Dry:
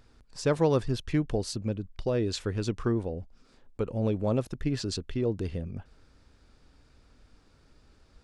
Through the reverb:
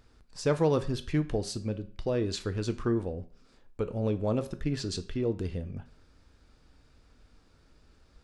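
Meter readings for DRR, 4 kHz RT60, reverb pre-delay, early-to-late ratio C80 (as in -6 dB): 9.0 dB, 0.40 s, 5 ms, 19.5 dB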